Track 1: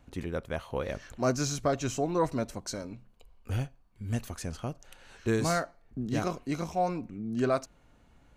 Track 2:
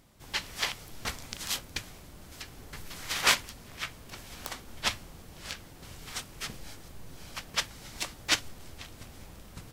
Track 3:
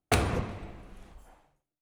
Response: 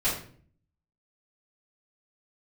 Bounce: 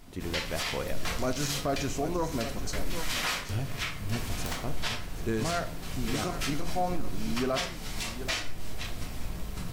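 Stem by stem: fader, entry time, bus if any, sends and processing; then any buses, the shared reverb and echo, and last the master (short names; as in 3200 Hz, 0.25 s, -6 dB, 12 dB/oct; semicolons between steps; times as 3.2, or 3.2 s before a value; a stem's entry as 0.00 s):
-2.0 dB, 0.00 s, send -19 dB, echo send -11.5 dB, dry
+1.0 dB, 0.00 s, send -5 dB, no echo send, compressor 2.5:1, threshold -38 dBFS, peak gain reduction 13.5 dB
off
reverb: on, RT60 0.50 s, pre-delay 3 ms
echo: echo 0.779 s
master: limiter -19.5 dBFS, peak gain reduction 8 dB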